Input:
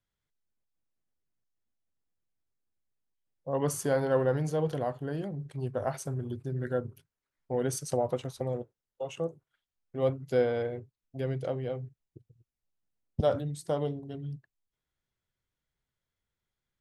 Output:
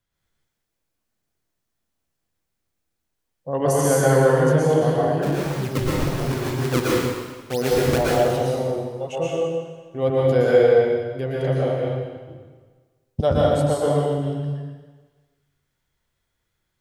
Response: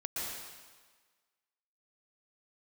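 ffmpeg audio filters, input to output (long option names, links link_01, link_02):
-filter_complex "[0:a]asettb=1/sr,asplit=3[link_01][link_02][link_03];[link_01]atrim=end=5.224[link_04];[link_02]atrim=start=5.22:end=7.98,asetpts=PTS-STARTPTS,afade=type=in:duration=0.004:curve=qsin,afade=type=out:start_time=2.756:duration=0.004:curve=qsin,acrusher=samples=38:mix=1:aa=0.000001:lfo=1:lforange=60.8:lforate=2[link_05];[link_03]atrim=start=7.976[link_06];[link_04][link_05]acrossfade=duration=0.004:curve1=hsin:curve2=qsin[link_07];[link_07][link_06]acrossfade=duration=0.004:curve1=qsin:curve2=hsin[link_08];[1:a]atrim=start_sample=2205[link_09];[link_08][link_09]afir=irnorm=-1:irlink=0,volume=9dB"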